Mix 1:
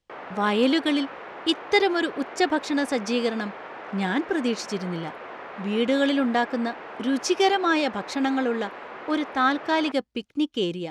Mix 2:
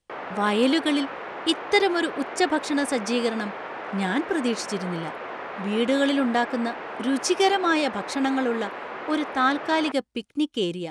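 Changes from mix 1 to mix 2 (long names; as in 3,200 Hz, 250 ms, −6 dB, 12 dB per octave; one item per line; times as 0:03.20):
speech: add parametric band 9,100 Hz +10 dB 0.49 octaves
background +4.0 dB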